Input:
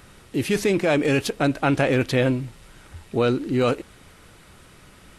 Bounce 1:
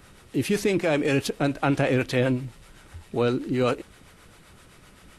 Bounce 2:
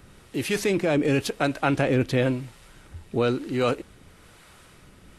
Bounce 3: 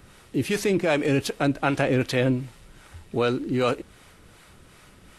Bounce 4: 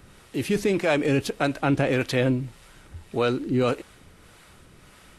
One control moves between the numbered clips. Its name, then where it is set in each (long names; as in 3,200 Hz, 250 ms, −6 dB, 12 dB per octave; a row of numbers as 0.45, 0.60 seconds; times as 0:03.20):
two-band tremolo in antiphase, speed: 7.7, 1, 2.6, 1.7 Hertz